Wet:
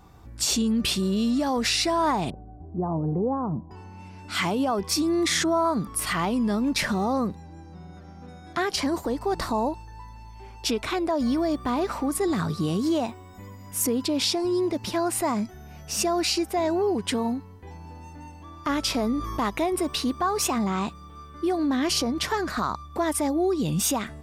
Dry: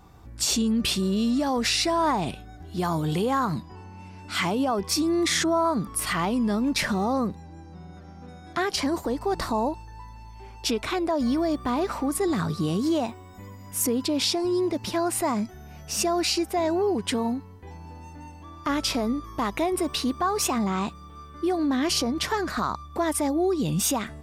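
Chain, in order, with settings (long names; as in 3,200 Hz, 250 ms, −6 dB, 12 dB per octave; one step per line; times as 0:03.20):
0:02.30–0:03.71: inverse Chebyshev low-pass filter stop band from 3,800 Hz, stop band 70 dB
0:18.96–0:19.49: envelope flattener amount 50%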